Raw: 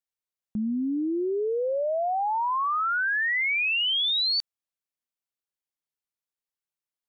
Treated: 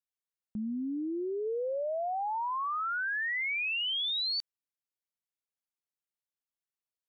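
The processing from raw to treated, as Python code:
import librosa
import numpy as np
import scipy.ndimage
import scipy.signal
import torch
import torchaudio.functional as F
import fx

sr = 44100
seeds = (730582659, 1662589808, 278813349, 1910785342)

y = fx.low_shelf(x, sr, hz=140.0, db=11.0, at=(1.44, 2.47), fade=0.02)
y = F.gain(torch.from_numpy(y), -7.0).numpy()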